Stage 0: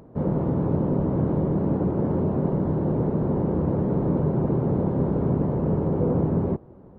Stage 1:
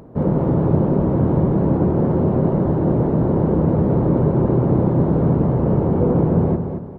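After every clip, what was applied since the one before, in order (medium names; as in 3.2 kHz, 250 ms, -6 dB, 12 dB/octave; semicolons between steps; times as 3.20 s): feedback delay 225 ms, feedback 35%, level -7.5 dB; trim +6 dB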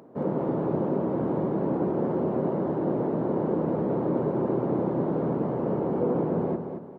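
high-pass 250 Hz 12 dB/octave; trim -5.5 dB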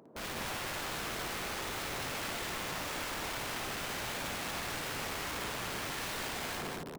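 integer overflow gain 28.5 dB; loudspeakers at several distances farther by 19 m -3 dB, 71 m -3 dB; trim -8 dB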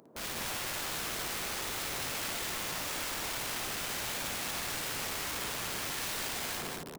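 treble shelf 3.8 kHz +8.5 dB; trim -1.5 dB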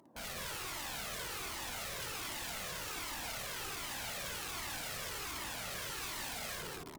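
one-sided clip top -39 dBFS; Shepard-style flanger falling 1.3 Hz; trim +1 dB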